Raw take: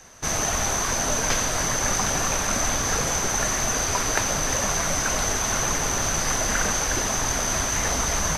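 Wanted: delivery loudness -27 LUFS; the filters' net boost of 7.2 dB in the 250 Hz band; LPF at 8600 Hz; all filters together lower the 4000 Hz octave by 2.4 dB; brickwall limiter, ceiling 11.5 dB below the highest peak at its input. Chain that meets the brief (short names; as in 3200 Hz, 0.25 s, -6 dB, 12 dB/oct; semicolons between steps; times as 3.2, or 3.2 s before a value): LPF 8600 Hz; bell 250 Hz +9 dB; bell 4000 Hz -3 dB; gain -2 dB; limiter -18 dBFS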